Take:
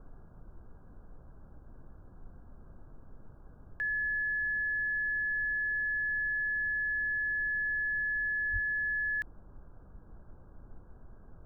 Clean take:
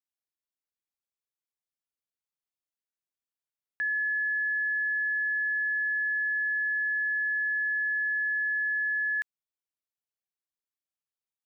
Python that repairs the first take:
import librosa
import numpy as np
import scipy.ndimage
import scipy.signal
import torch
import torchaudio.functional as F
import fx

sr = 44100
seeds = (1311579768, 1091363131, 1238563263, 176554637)

y = fx.highpass(x, sr, hz=140.0, slope=24, at=(8.52, 8.64), fade=0.02)
y = fx.noise_reduce(y, sr, print_start_s=3.29, print_end_s=3.79, reduce_db=30.0)
y = fx.fix_level(y, sr, at_s=3.77, step_db=3.5)